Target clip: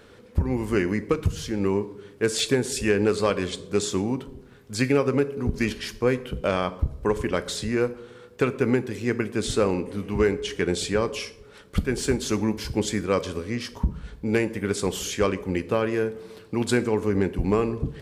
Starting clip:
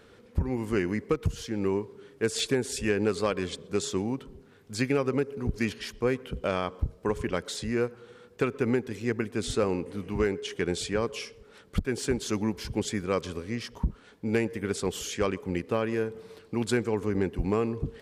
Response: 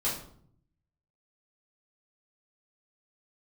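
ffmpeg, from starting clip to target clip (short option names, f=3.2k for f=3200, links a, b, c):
-filter_complex "[0:a]asplit=2[a][b];[1:a]atrim=start_sample=2205,highshelf=f=8.4k:g=9.5[c];[b][c]afir=irnorm=-1:irlink=0,volume=-18.5dB[d];[a][d]amix=inputs=2:normalize=0,volume=3.5dB"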